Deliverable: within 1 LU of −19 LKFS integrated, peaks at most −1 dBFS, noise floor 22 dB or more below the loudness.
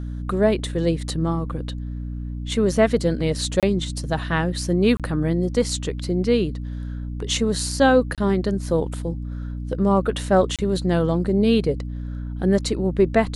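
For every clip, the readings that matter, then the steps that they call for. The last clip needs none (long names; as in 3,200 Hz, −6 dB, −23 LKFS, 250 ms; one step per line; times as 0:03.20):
number of dropouts 4; longest dropout 27 ms; mains hum 60 Hz; hum harmonics up to 300 Hz; level of the hum −27 dBFS; integrated loudness −22.5 LKFS; sample peak −4.0 dBFS; target loudness −19.0 LKFS
→ repair the gap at 0:03.60/0:04.97/0:08.15/0:10.56, 27 ms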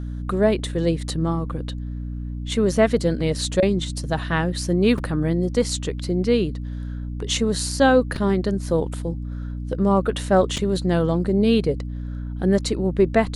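number of dropouts 0; mains hum 60 Hz; hum harmonics up to 300 Hz; level of the hum −27 dBFS
→ mains-hum notches 60/120/180/240/300 Hz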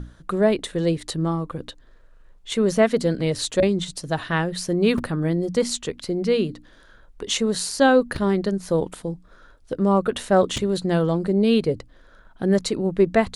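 mains hum none found; integrated loudness −22.5 LKFS; sample peak −5.0 dBFS; target loudness −19.0 LKFS
→ level +3.5 dB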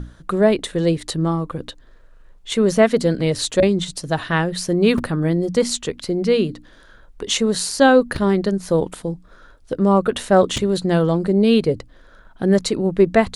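integrated loudness −19.0 LKFS; sample peak −1.5 dBFS; background noise floor −48 dBFS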